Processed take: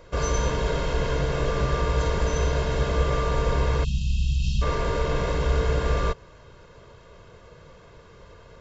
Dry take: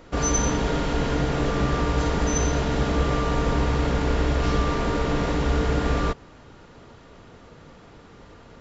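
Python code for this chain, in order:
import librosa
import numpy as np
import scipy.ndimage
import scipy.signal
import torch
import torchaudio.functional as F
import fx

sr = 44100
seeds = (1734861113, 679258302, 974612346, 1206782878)

y = fx.brickwall_bandstop(x, sr, low_hz=240.0, high_hz=2500.0, at=(3.83, 4.61), fade=0.02)
y = y + 0.67 * np.pad(y, (int(1.9 * sr / 1000.0), 0))[:len(y)]
y = y * 10.0 ** (-3.0 / 20.0)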